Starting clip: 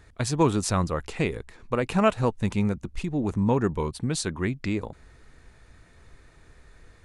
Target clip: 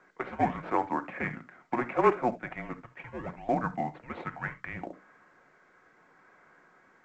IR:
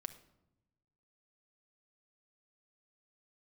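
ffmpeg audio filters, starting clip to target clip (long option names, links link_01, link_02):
-filter_complex "[0:a]bandreject=frequency=60:width_type=h:width=6,bandreject=frequency=120:width_type=h:width=6,bandreject=frequency=180:width_type=h:width=6,bandreject=frequency=240:width_type=h:width=6,bandreject=frequency=300:width_type=h:width=6,bandreject=frequency=360:width_type=h:width=6,bandreject=frequency=420:width_type=h:width=6,bandreject=frequency=480:width_type=h:width=6,bandreject=frequency=540:width_type=h:width=6,asplit=2[link_01][link_02];[link_02]acrusher=samples=17:mix=1:aa=0.000001:lfo=1:lforange=27.2:lforate=0.74,volume=-8dB[link_03];[link_01][link_03]amix=inputs=2:normalize=0,asettb=1/sr,asplit=3[link_04][link_05][link_06];[link_04]atrim=end=0.514[link_07];[link_05]atrim=start=0.51:end=2.55,asetpts=PTS-STARTPTS,afade=type=in:duration=0.004:curve=qsin,afade=type=out:start_time=2.036:duration=0.004:curve=qsin,afreqshift=-17[link_08];[link_06]atrim=start=2.546[link_09];[link_07][link_08]acrossfade=duration=0.004:curve1=hsin:curve2=qsin[link_10];[link_10][link_09]acrossfade=duration=0.004:curve1=qsin:curve2=hsin[link_11];[1:a]atrim=start_sample=2205,atrim=end_sample=3969[link_12];[link_11][link_12]afir=irnorm=-1:irlink=0,highpass=frequency=540:width_type=q:width=0.5412,highpass=frequency=540:width_type=q:width=1.307,lowpass=frequency=2500:width_type=q:width=0.5176,lowpass=frequency=2500:width_type=q:width=0.7071,lowpass=frequency=2500:width_type=q:width=1.932,afreqshift=-230,volume=3dB" -ar 16000 -c:a pcm_mulaw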